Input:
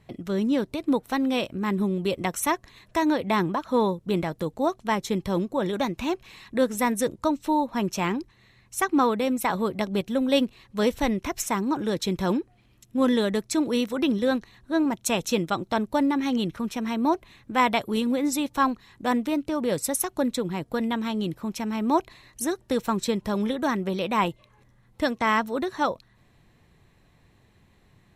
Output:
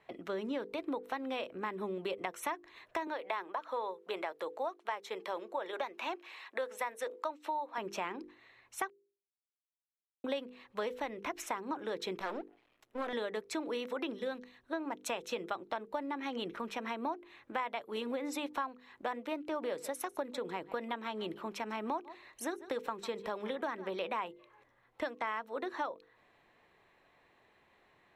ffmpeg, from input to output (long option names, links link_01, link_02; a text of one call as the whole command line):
ffmpeg -i in.wav -filter_complex "[0:a]asettb=1/sr,asplit=3[link_01][link_02][link_03];[link_01]atrim=end=3.074[link_04];[link_02]atrim=start=3.07:end=7.78,asetpts=PTS-STARTPTS,afade=type=in:duration=0.004:curve=qsin,afade=type=out:start_time=4.706:duration=0.004:curve=qsin,highpass=490[link_05];[link_03]atrim=start=7.776[link_06];[link_04][link_05]acrossfade=duration=0.004:curve1=hsin:curve2=qsin[link_07];[link_07][link_06]acrossfade=duration=0.004:curve1=qsin:curve2=hsin,asettb=1/sr,asplit=3[link_08][link_09][link_10];[link_08]atrim=end=12.194[link_11];[link_09]atrim=start=12.19:end=13.13,asetpts=PTS-STARTPTS,afade=type=in:duration=0.004:curve=qsin,afade=type=out:start_time=0.936:duration=0.004:curve=qsin,aeval=exprs='max(val(0),0)':channel_layout=same[link_12];[link_10]atrim=start=13.126[link_13];[link_11][link_12]acrossfade=duration=0.004:curve1=hsin:curve2=qsin[link_14];[link_14][link_13]acrossfade=duration=0.004:curve1=qsin:curve2=hsin,asettb=1/sr,asplit=3[link_15][link_16][link_17];[link_15]atrim=end=14.134[link_18];[link_16]atrim=start=14.13:end=14.73,asetpts=PTS-STARTPTS,afade=type=in:duration=0.004:curve=qsin,afade=type=out:start_time=0.596:duration=0.004:curve=qsin,equalizer=frequency=930:width_type=o:width=2.7:gain=-7[link_19];[link_17]atrim=start=14.726[link_20];[link_18][link_19]acrossfade=duration=0.004:curve1=hsin:curve2=qsin[link_21];[link_21][link_20]acrossfade=duration=0.004:curve1=qsin:curve2=hsin,asettb=1/sr,asplit=3[link_22][link_23][link_24];[link_22]atrim=end=19.394[link_25];[link_23]atrim=start=19.39:end=23.98,asetpts=PTS-STARTPTS,afade=type=in:duration=0.004:curve=qsin,afade=type=out:start_time=4.586:duration=0.004:curve=qsin,aecho=1:1:148:0.106,atrim=end_sample=202419[link_26];[link_24]atrim=start=23.976[link_27];[link_25][link_26]acrossfade=duration=0.004:curve1=hsin:curve2=qsin[link_28];[link_28][link_27]acrossfade=duration=0.004:curve1=qsin:curve2=hsin,asplit=3[link_29][link_30][link_31];[link_29]atrim=end=8.9,asetpts=PTS-STARTPTS,afade=type=out:start_time=8.896:duration=0.004:curve=hsin[link_32];[link_30]atrim=start=8.9:end=10.24,asetpts=PTS-STARTPTS,volume=0[link_33];[link_31]atrim=start=10.24,asetpts=PTS-STARTPTS,afade=type=in:duration=0.004:curve=hsin[link_34];[link_32][link_33][link_34]concat=n=3:v=0:a=1,acrossover=split=350 3300:gain=0.0891 1 0.2[link_35][link_36][link_37];[link_35][link_36][link_37]amix=inputs=3:normalize=0,bandreject=frequency=50:width_type=h:width=6,bandreject=frequency=100:width_type=h:width=6,bandreject=frequency=150:width_type=h:width=6,bandreject=frequency=200:width_type=h:width=6,bandreject=frequency=250:width_type=h:width=6,bandreject=frequency=300:width_type=h:width=6,bandreject=frequency=350:width_type=h:width=6,bandreject=frequency=400:width_type=h:width=6,bandreject=frequency=450:width_type=h:width=6,bandreject=frequency=500:width_type=h:width=6,acompressor=threshold=-34dB:ratio=6" out.wav